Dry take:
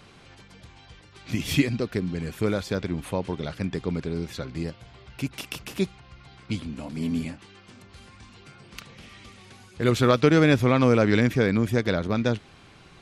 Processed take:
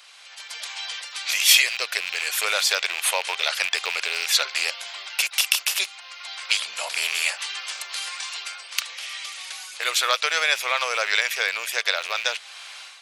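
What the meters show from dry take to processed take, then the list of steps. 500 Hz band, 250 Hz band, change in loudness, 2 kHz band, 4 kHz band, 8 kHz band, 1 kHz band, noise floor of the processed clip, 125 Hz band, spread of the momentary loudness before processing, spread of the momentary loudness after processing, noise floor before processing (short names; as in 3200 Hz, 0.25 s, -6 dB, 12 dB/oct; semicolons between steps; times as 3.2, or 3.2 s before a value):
-9.5 dB, under -30 dB, +2.5 dB, +9.5 dB, +15.0 dB, +18.0 dB, +3.0 dB, -44 dBFS, under -40 dB, 15 LU, 13 LU, -52 dBFS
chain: rattling part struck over -30 dBFS, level -29 dBFS; in parallel at +2 dB: compressor, threshold -31 dBFS, peak gain reduction 17 dB; on the sum: inverse Chebyshev high-pass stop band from 290 Hz, stop band 40 dB; AGC gain up to 16 dB; tilt shelf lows -9.5 dB, about 1400 Hz; gain -6.5 dB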